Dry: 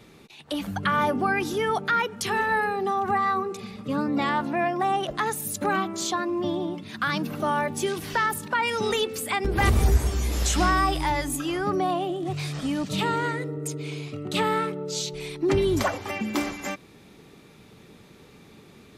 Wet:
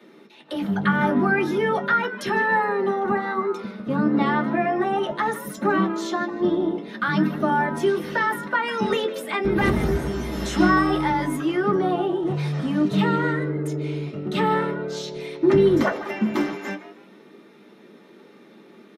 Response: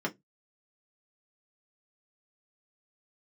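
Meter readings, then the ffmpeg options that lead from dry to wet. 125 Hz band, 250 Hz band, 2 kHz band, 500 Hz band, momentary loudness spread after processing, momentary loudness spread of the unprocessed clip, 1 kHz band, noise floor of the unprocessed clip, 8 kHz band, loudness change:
+2.0 dB, +6.5 dB, +3.0 dB, +5.0 dB, 8 LU, 8 LU, +1.0 dB, -51 dBFS, -9.5 dB, +3.0 dB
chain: -filter_complex "[0:a]acrossover=split=220|6200[a][b][c];[a]acrusher=bits=5:mix=0:aa=0.5[d];[b]asplit=4[e][f][g][h];[f]adelay=153,afreqshift=110,volume=-14.5dB[i];[g]adelay=306,afreqshift=220,volume=-23.6dB[j];[h]adelay=459,afreqshift=330,volume=-32.7dB[k];[e][i][j][k]amix=inputs=4:normalize=0[l];[d][l][c]amix=inputs=3:normalize=0[m];[1:a]atrim=start_sample=2205[n];[m][n]afir=irnorm=-1:irlink=0,volume=-4.5dB"

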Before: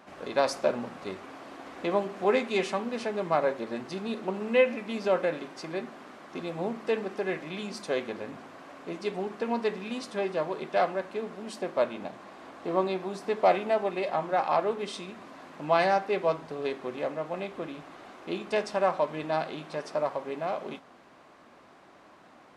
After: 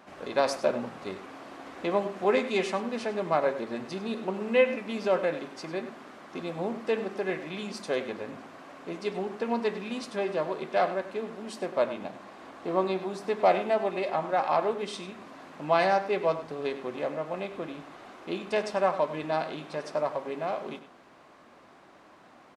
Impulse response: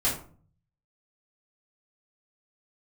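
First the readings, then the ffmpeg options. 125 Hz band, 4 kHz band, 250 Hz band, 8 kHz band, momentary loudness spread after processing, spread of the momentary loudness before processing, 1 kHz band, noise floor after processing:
0.0 dB, 0.0 dB, +0.5 dB, 0.0 dB, 16 LU, 16 LU, 0.0 dB, -55 dBFS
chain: -filter_complex "[0:a]asplit=2[a][b];[b]adelay=99.13,volume=-13dB,highshelf=f=4k:g=-2.23[c];[a][c]amix=inputs=2:normalize=0"

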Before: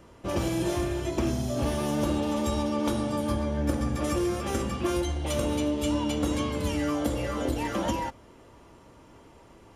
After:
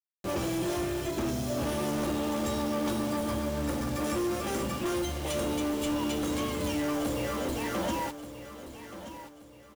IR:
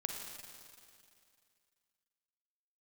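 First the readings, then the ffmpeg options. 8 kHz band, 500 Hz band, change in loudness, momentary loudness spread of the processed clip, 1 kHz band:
0.0 dB, -2.0 dB, -2.5 dB, 13 LU, -1.5 dB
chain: -filter_complex "[0:a]lowshelf=f=74:g=-11,bandreject=f=920:w=29,acrusher=bits=6:mix=0:aa=0.000001,asoftclip=type=hard:threshold=-27dB,asplit=2[a][b];[b]aecho=0:1:1178|2356|3534|4712:0.237|0.083|0.029|0.0102[c];[a][c]amix=inputs=2:normalize=0"

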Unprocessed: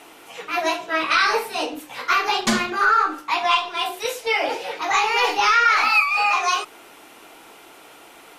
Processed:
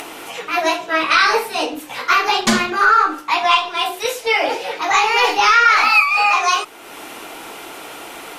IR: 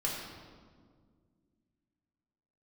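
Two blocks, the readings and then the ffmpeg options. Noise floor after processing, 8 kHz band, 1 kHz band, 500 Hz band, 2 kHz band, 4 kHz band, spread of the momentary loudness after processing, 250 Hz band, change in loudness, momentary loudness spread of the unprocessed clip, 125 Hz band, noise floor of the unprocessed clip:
-36 dBFS, +4.5 dB, +4.5 dB, +4.5 dB, +4.5 dB, +4.5 dB, 21 LU, +4.5 dB, +4.5 dB, 11 LU, n/a, -46 dBFS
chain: -af "acompressor=mode=upward:threshold=-29dB:ratio=2.5,volume=4.5dB"

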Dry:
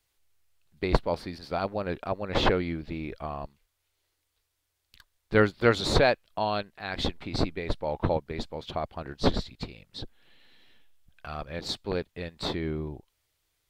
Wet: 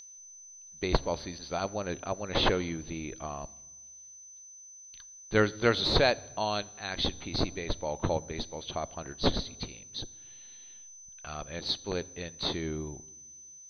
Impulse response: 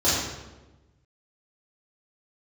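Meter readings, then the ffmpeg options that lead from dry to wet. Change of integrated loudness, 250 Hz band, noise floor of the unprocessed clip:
-2.0 dB, -3.0 dB, -78 dBFS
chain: -filter_complex "[0:a]aeval=exprs='val(0)+0.0224*sin(2*PI*6100*n/s)':c=same,highshelf=f=5.5k:t=q:w=3:g=-10,asplit=2[a][b];[1:a]atrim=start_sample=2205[c];[b][c]afir=irnorm=-1:irlink=0,volume=-37dB[d];[a][d]amix=inputs=2:normalize=0,volume=-3.5dB"

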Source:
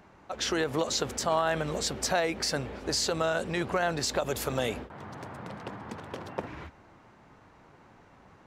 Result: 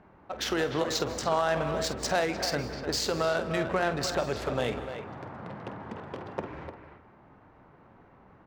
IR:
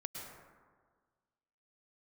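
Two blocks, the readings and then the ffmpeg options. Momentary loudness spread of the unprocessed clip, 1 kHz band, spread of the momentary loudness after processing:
15 LU, +0.5 dB, 14 LU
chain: -filter_complex "[0:a]adynamicsmooth=sensitivity=5.5:basefreq=2.2k,asplit=2[a][b];[b]adelay=300,highpass=300,lowpass=3.4k,asoftclip=type=hard:threshold=-23.5dB,volume=-8dB[c];[a][c]amix=inputs=2:normalize=0,asplit=2[d][e];[1:a]atrim=start_sample=2205,afade=t=out:st=0.37:d=0.01,atrim=end_sample=16758,adelay=48[f];[e][f]afir=irnorm=-1:irlink=0,volume=-8dB[g];[d][g]amix=inputs=2:normalize=0"

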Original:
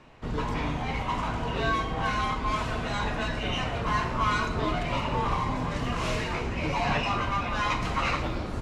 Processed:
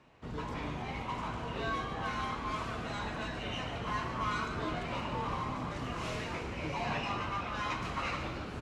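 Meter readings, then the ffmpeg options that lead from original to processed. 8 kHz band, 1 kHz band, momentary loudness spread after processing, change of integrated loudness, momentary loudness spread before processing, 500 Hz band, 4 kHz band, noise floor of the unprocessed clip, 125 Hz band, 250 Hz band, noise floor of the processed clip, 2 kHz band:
-8.0 dB, -8.0 dB, 4 LU, -8.0 dB, 4 LU, -7.5 dB, -7.5 dB, -33 dBFS, -8.5 dB, -7.5 dB, -41 dBFS, -7.5 dB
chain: -filter_complex "[0:a]highpass=52,asplit=9[a][b][c][d][e][f][g][h][i];[b]adelay=146,afreqshift=77,volume=-10dB[j];[c]adelay=292,afreqshift=154,volume=-13.9dB[k];[d]adelay=438,afreqshift=231,volume=-17.8dB[l];[e]adelay=584,afreqshift=308,volume=-21.6dB[m];[f]adelay=730,afreqshift=385,volume=-25.5dB[n];[g]adelay=876,afreqshift=462,volume=-29.4dB[o];[h]adelay=1022,afreqshift=539,volume=-33.3dB[p];[i]adelay=1168,afreqshift=616,volume=-37.1dB[q];[a][j][k][l][m][n][o][p][q]amix=inputs=9:normalize=0,volume=-8.5dB"

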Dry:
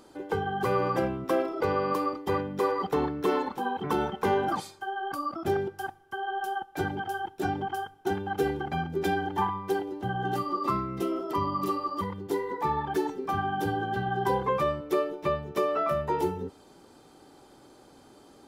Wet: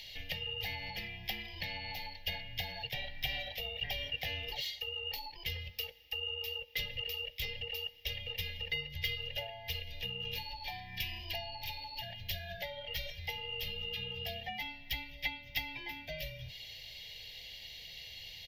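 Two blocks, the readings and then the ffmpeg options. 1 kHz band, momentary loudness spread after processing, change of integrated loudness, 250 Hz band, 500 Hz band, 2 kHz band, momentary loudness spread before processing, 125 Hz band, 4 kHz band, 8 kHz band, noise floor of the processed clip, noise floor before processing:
-21.0 dB, 7 LU, -9.5 dB, -24.5 dB, -20.0 dB, -3.0 dB, 6 LU, -10.0 dB, +9.0 dB, -5.5 dB, -51 dBFS, -55 dBFS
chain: -filter_complex "[0:a]tiltshelf=f=1.5k:g=-8,acrossover=split=1600[a][b];[a]asplit=2[c][d];[d]adelay=17,volume=-5dB[e];[c][e]amix=inputs=2:normalize=0[f];[b]asoftclip=type=tanh:threshold=-31dB[g];[f][g]amix=inputs=2:normalize=0,acompressor=threshold=-40dB:ratio=5,afreqshift=-310,firequalizer=gain_entry='entry(120,0);entry(230,-14);entry(540,-5);entry(770,-2);entry(1200,-28);entry(1900,13);entry(3200,14);entry(5700,3);entry(8900,-25);entry(13000,8)':delay=0.05:min_phase=1,volume=1dB"

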